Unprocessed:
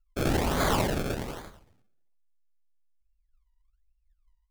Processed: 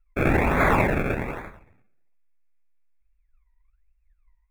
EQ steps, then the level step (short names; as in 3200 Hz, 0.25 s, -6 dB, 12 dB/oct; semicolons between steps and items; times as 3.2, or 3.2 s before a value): Butterworth band-stop 3000 Hz, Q 4.7; resonant high shelf 3300 Hz -12 dB, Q 3; +5.0 dB